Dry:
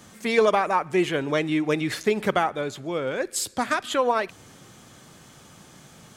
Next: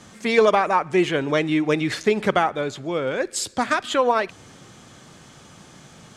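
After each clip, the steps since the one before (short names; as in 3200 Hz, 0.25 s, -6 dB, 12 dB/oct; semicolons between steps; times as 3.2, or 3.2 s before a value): LPF 8200 Hz 12 dB/oct; gain +3 dB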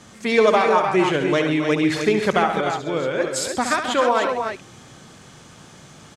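tapped delay 70/133/270/302 ms -8/-12/-11.5/-6.5 dB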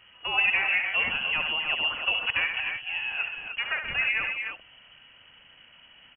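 inverted band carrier 3100 Hz; gain -8.5 dB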